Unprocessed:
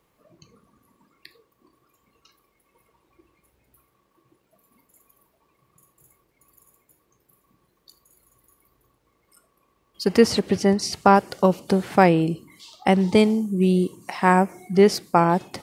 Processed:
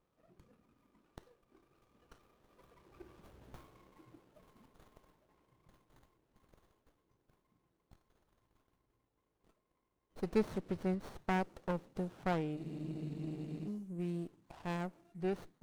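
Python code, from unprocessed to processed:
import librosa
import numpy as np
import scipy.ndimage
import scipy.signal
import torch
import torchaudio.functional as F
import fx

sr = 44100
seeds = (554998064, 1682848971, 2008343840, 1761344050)

y = fx.doppler_pass(x, sr, speed_mps=21, closest_m=9.0, pass_at_s=3.46)
y = fx.spec_freeze(y, sr, seeds[0], at_s=12.59, hold_s=1.08)
y = fx.running_max(y, sr, window=17)
y = y * 10.0 ** (7.5 / 20.0)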